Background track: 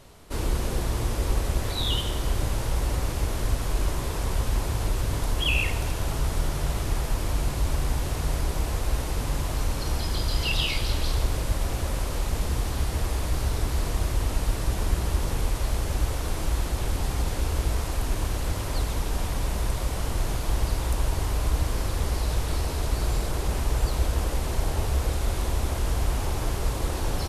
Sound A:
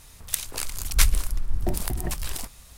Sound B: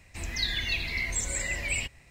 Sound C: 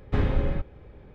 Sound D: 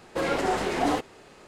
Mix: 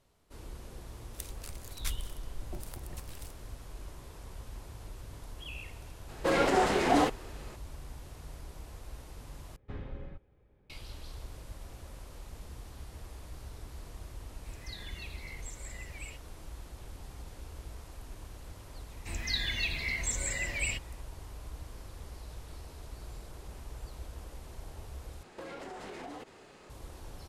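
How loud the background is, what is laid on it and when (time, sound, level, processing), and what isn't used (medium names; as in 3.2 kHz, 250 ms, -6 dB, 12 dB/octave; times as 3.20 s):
background track -19.5 dB
0.86 s: add A -17 dB
6.09 s: add D
9.56 s: replace with C -18 dB
14.30 s: add B -17 dB
18.91 s: add B -3 dB
25.23 s: replace with D -4 dB + compression 12:1, threshold -36 dBFS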